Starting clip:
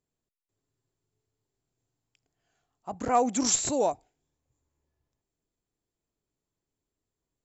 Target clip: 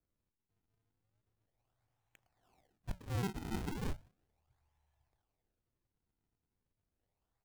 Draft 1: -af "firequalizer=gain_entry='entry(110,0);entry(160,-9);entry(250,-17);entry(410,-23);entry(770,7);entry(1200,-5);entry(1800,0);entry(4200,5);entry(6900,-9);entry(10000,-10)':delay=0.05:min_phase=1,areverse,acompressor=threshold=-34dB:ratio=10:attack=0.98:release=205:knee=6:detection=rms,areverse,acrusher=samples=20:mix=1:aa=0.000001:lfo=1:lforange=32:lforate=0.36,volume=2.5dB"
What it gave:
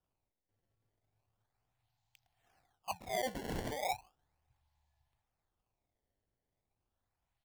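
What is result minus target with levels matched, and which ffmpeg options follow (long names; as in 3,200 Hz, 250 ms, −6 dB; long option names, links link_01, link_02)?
sample-and-hold swept by an LFO: distortion +8 dB
-af "firequalizer=gain_entry='entry(110,0);entry(160,-9);entry(250,-17);entry(410,-23);entry(770,7);entry(1200,-5);entry(1800,0);entry(4200,5);entry(6900,-9);entry(10000,-10)':delay=0.05:min_phase=1,areverse,acompressor=threshold=-34dB:ratio=10:attack=0.98:release=205:knee=6:detection=rms,areverse,acrusher=samples=44:mix=1:aa=0.000001:lfo=1:lforange=70.4:lforate=0.36,volume=2.5dB"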